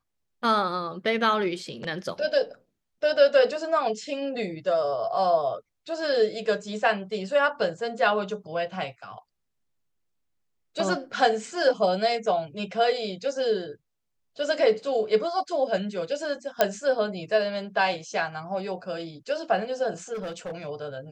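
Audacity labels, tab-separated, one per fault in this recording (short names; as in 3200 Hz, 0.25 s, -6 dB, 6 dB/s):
16.610000	16.610000	pop -6 dBFS
20.130000	20.540000	clipped -30 dBFS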